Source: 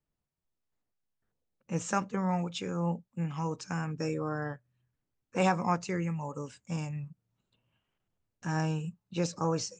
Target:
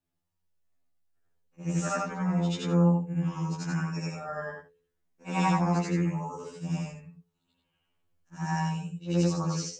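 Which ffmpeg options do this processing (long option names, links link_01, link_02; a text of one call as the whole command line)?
ffmpeg -i in.wav -af "afftfilt=real='re':imag='-im':win_size=8192:overlap=0.75,bandreject=frequency=72.1:width_type=h:width=4,bandreject=frequency=144.2:width_type=h:width=4,bandreject=frequency=216.3:width_type=h:width=4,bandreject=frequency=288.4:width_type=h:width=4,bandreject=frequency=360.5:width_type=h:width=4,bandreject=frequency=432.6:width_type=h:width=4,bandreject=frequency=504.7:width_type=h:width=4,bandreject=frequency=576.8:width_type=h:width=4,bandreject=frequency=648.9:width_type=h:width=4,afftfilt=real='re*2*eq(mod(b,4),0)':imag='im*2*eq(mod(b,4),0)':win_size=2048:overlap=0.75,volume=8.5dB" out.wav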